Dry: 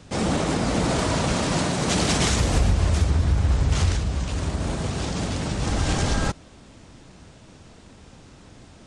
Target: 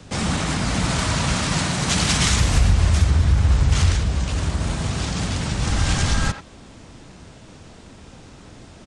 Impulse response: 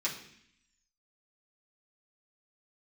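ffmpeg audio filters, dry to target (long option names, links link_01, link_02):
-filter_complex "[0:a]acrossover=split=210|940[link_01][link_02][link_03];[link_02]acompressor=threshold=-39dB:ratio=6[link_04];[link_01][link_04][link_03]amix=inputs=3:normalize=0,asplit=2[link_05][link_06];[link_06]adelay=90,highpass=300,lowpass=3400,asoftclip=type=hard:threshold=-17.5dB,volume=-9dB[link_07];[link_05][link_07]amix=inputs=2:normalize=0,volume=4dB"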